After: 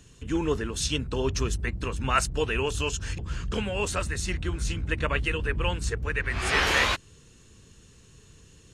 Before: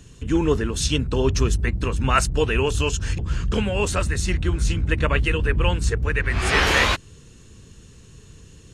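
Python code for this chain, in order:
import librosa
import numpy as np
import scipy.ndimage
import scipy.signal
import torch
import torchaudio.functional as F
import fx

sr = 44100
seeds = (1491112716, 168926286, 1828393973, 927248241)

y = fx.low_shelf(x, sr, hz=410.0, db=-4.5)
y = y * librosa.db_to_amplitude(-4.0)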